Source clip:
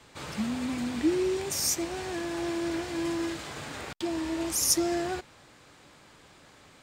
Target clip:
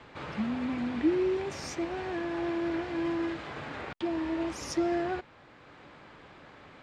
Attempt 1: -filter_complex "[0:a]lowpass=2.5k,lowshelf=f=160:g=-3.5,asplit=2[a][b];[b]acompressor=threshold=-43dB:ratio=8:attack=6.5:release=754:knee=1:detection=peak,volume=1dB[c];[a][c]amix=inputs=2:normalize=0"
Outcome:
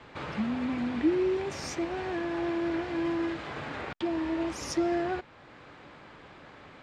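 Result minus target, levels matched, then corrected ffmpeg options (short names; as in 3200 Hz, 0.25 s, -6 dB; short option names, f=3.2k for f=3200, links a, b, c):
compressor: peak gain reduction -10 dB
-filter_complex "[0:a]lowpass=2.5k,lowshelf=f=160:g=-3.5,asplit=2[a][b];[b]acompressor=threshold=-54.5dB:ratio=8:attack=6.5:release=754:knee=1:detection=peak,volume=1dB[c];[a][c]amix=inputs=2:normalize=0"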